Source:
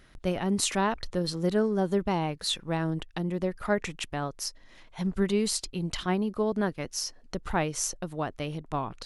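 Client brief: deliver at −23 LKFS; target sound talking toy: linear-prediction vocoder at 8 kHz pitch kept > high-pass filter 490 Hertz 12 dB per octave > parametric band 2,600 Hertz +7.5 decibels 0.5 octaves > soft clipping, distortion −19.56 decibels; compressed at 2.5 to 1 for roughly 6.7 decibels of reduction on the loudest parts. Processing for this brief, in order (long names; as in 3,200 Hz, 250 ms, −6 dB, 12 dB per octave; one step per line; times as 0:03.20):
downward compressor 2.5 to 1, threshold −31 dBFS
linear-prediction vocoder at 8 kHz pitch kept
high-pass filter 490 Hz 12 dB per octave
parametric band 2,600 Hz +7.5 dB 0.5 octaves
soft clipping −25.5 dBFS
level +17.5 dB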